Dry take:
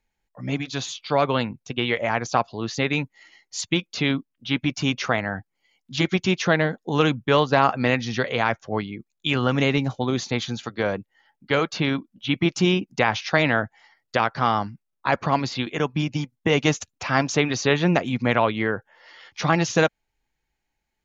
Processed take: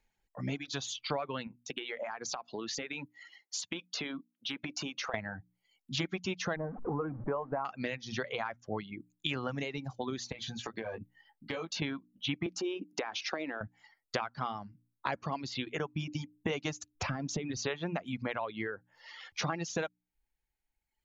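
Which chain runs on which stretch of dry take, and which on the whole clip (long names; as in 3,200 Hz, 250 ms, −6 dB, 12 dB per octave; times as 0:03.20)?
0:01.47–0:05.14: high-pass filter 250 Hz + downward compressor 10 to 1, threshold −31 dBFS
0:06.56–0:07.65: converter with a step at zero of −24.5 dBFS + low-pass filter 1,300 Hz 24 dB per octave
0:10.32–0:11.82: notch filter 1,400 Hz, Q 9.2 + double-tracking delay 18 ms −4 dB + downward compressor, threshold −32 dBFS
0:12.46–0:13.61: downward compressor, threshold −24 dBFS + high-pass with resonance 330 Hz, resonance Q 2.4
0:16.95–0:17.57: downward compressor 4 to 1, threshold −27 dBFS + low-shelf EQ 400 Hz +11.5 dB
whole clip: mains-hum notches 60/120/180/240/300 Hz; downward compressor 4 to 1, threshold −33 dBFS; reverb reduction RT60 1.6 s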